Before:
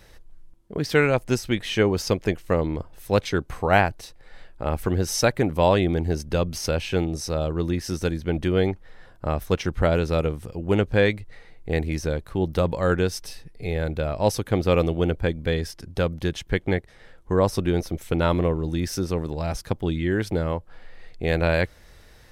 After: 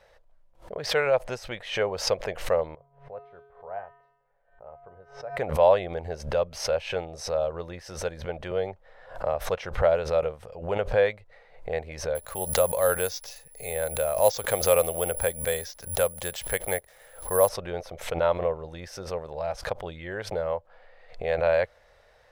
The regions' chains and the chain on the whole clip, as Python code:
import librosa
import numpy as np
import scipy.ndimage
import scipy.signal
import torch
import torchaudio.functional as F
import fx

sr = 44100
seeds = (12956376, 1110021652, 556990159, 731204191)

y = fx.chain(x, sr, fx.lowpass(hz=1300.0, slope=12),
    fx.comb_fb(f0_hz=140.0, decay_s=0.99, harmonics='odd', damping=0.0, mix_pct=90), at=(2.75, 5.37))
y = fx.chain(y, sr, fx.dynamic_eq(hz=1700.0, q=0.77, threshold_db=-42.0, ratio=4.0, max_db=-4),
    fx.band_squash(depth_pct=40), at=(8.51, 9.34))
y = fx.chain(y, sr, fx.brickwall_lowpass(high_hz=7700.0),
    fx.high_shelf(hz=2600.0, db=8.0),
    fx.resample_bad(factor=4, down='none', up='zero_stuff'), at=(12.15, 17.49))
y = fx.lowpass(y, sr, hz=2200.0, slope=6)
y = fx.low_shelf_res(y, sr, hz=410.0, db=-10.5, q=3.0)
y = fx.pre_swell(y, sr, db_per_s=120.0)
y = y * 10.0 ** (-4.0 / 20.0)